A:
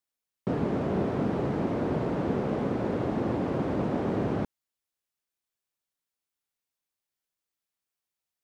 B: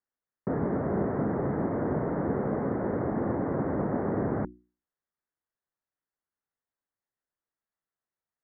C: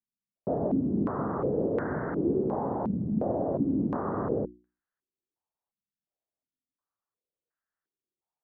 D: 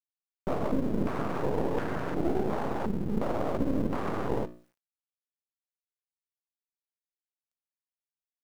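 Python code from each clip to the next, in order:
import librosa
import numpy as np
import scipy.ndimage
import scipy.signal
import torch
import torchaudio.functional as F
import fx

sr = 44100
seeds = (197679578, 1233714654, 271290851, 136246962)

y1 = scipy.signal.sosfilt(scipy.signal.butter(12, 2000.0, 'lowpass', fs=sr, output='sos'), x)
y1 = fx.hum_notches(y1, sr, base_hz=60, count=6)
y2 = fx.filter_held_lowpass(y1, sr, hz=2.8, low_hz=200.0, high_hz=1600.0)
y2 = F.gain(torch.from_numpy(y2), -4.0).numpy()
y3 = fx.law_mismatch(y2, sr, coded='mu')
y3 = np.maximum(y3, 0.0)
y3 = F.gain(torch.from_numpy(y3), 2.0).numpy()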